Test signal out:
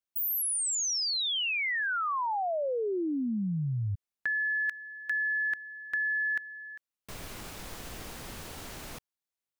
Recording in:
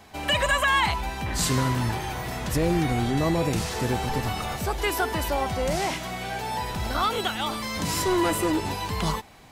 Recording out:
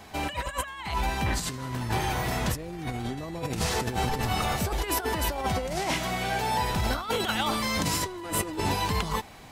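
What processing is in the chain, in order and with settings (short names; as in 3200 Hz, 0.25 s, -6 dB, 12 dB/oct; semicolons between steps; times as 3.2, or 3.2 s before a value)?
negative-ratio compressor -28 dBFS, ratio -0.5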